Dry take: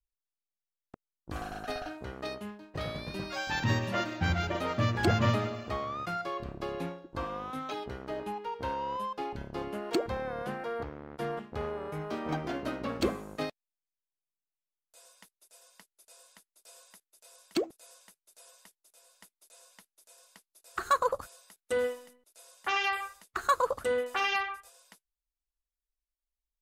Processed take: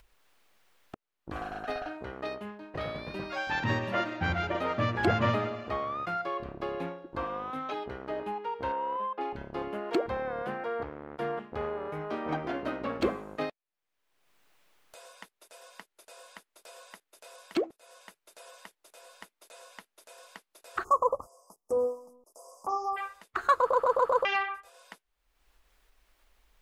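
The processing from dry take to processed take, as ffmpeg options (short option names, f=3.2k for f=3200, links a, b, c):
-filter_complex "[0:a]asettb=1/sr,asplit=3[a][b][c];[a]atrim=end=8.724[d];[b]atrim=start=8.72:end=9.21,asetpts=PTS-STARTPTS,afade=t=in:d=0.004:c=qsin,afade=t=out:st=0.486:d=0.004:c=qsin,highpass=240,lowpass=2.5k[e];[c]atrim=start=9.206[f];[d][e]acrossfade=d=0.004:c1=hsin:c2=qsin[g];[g][f]acrossfade=d=0.004:c1=qsin:c2=hsin,asplit=3[h][i][j];[h]afade=t=out:st=20.83:d=0.02[k];[i]asuperstop=centerf=2500:order=20:qfactor=0.65,afade=t=in:st=20.83:d=0.02,afade=t=out:st=22.96:d=0.02[l];[j]afade=t=in:st=22.96:d=0.02[m];[k][l][m]amix=inputs=3:normalize=0,asplit=6[n][o][p][q][r][s];[n]atrim=end=23.732[t];[o]atrim=start=23.598:end=23.732[u];[p]atrim=start=23.598:end=23.732[v];[q]atrim=start=23.598:end=23.732[w];[r]atrim=start=23.598:end=23.732[x];[s]atrim=start=24.248[y];[t][u]acrossfade=d=0.004:c1=hsin:c2=hsin[z];[z][v]acrossfade=d=0.004:c1=hsin:c2=hsin[aa];[aa][w]acrossfade=d=0.004:c1=hsin:c2=hsin[ab];[ab][x]acrossfade=d=0.004:c1=hsin:c2=hsin[ac];[ac][y]acrossfade=d=0.004:c1=hsin:c2=hsin,acompressor=mode=upward:threshold=-37dB:ratio=2.5,bass=f=250:g=-6,treble=f=4k:g=-13,volume=2.5dB"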